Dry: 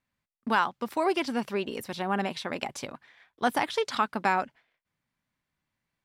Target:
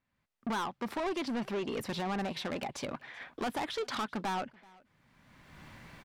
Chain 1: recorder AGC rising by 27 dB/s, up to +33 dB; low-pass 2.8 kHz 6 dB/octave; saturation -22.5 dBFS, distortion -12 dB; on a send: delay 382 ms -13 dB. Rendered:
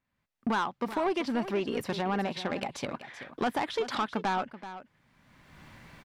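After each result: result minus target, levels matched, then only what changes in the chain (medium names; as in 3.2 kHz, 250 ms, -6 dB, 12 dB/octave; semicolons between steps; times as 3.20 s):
echo-to-direct +12 dB; saturation: distortion -6 dB
change: delay 382 ms -25 dB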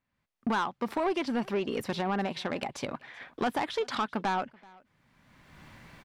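saturation: distortion -6 dB
change: saturation -30.5 dBFS, distortion -6 dB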